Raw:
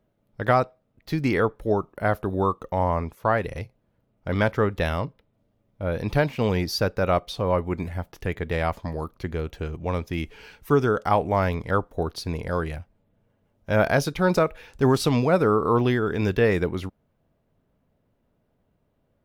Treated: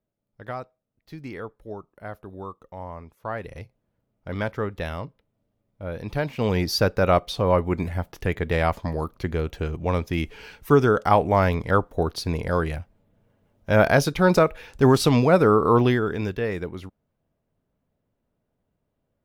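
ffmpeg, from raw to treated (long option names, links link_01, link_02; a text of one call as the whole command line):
ffmpeg -i in.wav -af "volume=3dB,afade=type=in:start_time=3.07:duration=0.54:silence=0.398107,afade=type=in:start_time=6.16:duration=0.59:silence=0.375837,afade=type=out:start_time=15.81:duration=0.54:silence=0.334965" out.wav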